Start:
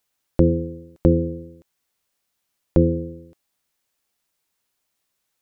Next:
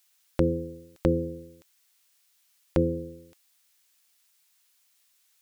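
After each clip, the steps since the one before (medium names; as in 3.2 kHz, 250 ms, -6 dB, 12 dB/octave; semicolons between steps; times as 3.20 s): tilt shelf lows -9.5 dB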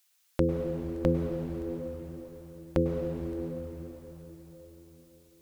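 plate-style reverb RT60 4.7 s, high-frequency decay 0.9×, pre-delay 90 ms, DRR 2 dB; trim -2.5 dB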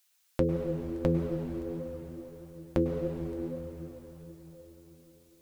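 flange 1.6 Hz, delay 4.8 ms, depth 4.2 ms, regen +61%; trim +3.5 dB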